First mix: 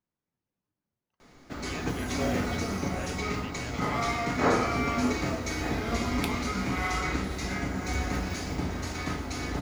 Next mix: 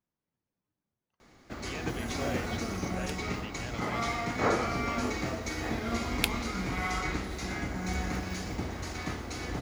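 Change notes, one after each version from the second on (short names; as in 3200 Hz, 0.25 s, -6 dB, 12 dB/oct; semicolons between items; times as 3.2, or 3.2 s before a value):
second sound +10.5 dB; reverb: off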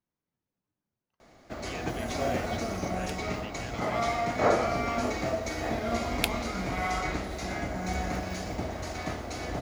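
first sound: add bell 640 Hz +10.5 dB 0.48 oct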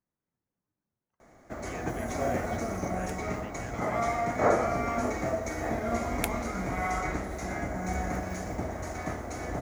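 master: add band shelf 3600 Hz -10.5 dB 1.2 oct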